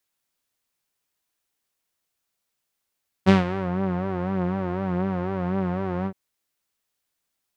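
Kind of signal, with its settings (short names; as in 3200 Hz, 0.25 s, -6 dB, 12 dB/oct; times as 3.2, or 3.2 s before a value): synth patch with vibrato F#3, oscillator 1 saw, sub -13.5 dB, filter lowpass, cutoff 970 Hz, Q 0.77, filter envelope 2 oct, filter decay 0.44 s, filter sustain 20%, attack 29 ms, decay 0.15 s, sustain -12 dB, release 0.07 s, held 2.80 s, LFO 4 Hz, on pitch 83 cents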